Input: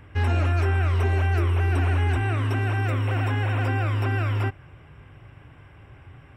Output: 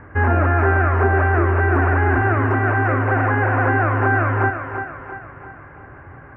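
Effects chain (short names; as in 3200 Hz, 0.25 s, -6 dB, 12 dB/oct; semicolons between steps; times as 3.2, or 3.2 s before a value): EQ curve 130 Hz 0 dB, 210 Hz +5 dB, 1700 Hz +9 dB, 3600 Hz -24 dB; thinning echo 0.342 s, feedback 50%, high-pass 210 Hz, level -7 dB; gain +3.5 dB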